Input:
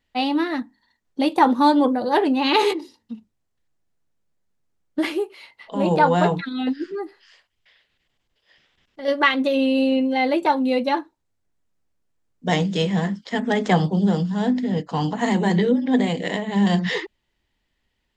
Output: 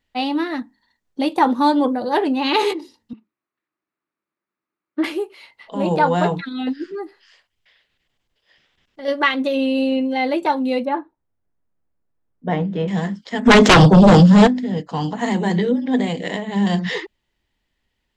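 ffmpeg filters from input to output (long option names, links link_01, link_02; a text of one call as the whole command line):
ffmpeg -i in.wav -filter_complex "[0:a]asettb=1/sr,asplit=3[link_01][link_02][link_03];[link_01]atrim=end=3.134[link_04];[link_02]atrim=start=3.13:end=5.04,asetpts=PTS-STARTPTS,afade=type=in:duration=0.004:curve=qsin,afade=type=out:start_time=1.906:duration=0.004:curve=qsin,highpass=320,equalizer=frequency=330:width_type=q:width=4:gain=7,equalizer=frequency=490:width_type=q:width=4:gain=-8,equalizer=frequency=740:width_type=q:width=4:gain=-6,equalizer=frequency=1200:width_type=q:width=4:gain=8,equalizer=frequency=2300:width_type=q:width=4:gain=3,equalizer=frequency=3200:width_type=q:width=4:gain=-8,lowpass=frequency=3600:width=0.5412,lowpass=frequency=3600:width=1.3066[link_05];[link_03]atrim=start=5.036[link_06];[link_04][link_05]acrossfade=duration=0.004:curve1=hsin:curve2=qsin[link_07];[link_07][link_06]acrossfade=duration=0.004:curve1=qsin:curve2=hsin,asettb=1/sr,asplit=3[link_08][link_09][link_10];[link_08]atrim=end=10.854[link_11];[link_09]atrim=start=10.85:end=12.88,asetpts=PTS-STARTPTS,afade=type=in:duration=0.004:curve=qsin,afade=type=out:start_time=2.026:duration=0.004:curve=qsin,lowpass=1600[link_12];[link_10]atrim=start=12.876[link_13];[link_11][link_12]acrossfade=duration=0.004:curve1=hsin:curve2=qsin[link_14];[link_14][link_13]acrossfade=duration=0.004:curve1=qsin:curve2=hsin,asplit=3[link_15][link_16][link_17];[link_15]afade=type=out:start_time=13.45:duration=0.02[link_18];[link_16]aeval=exprs='0.562*sin(PI/2*4.47*val(0)/0.562)':channel_layout=same,afade=type=in:start_time=13.45:duration=0.02,afade=type=out:start_time=14.46:duration=0.02[link_19];[link_17]afade=type=in:start_time=14.46:duration=0.02[link_20];[link_18][link_19][link_20]amix=inputs=3:normalize=0" out.wav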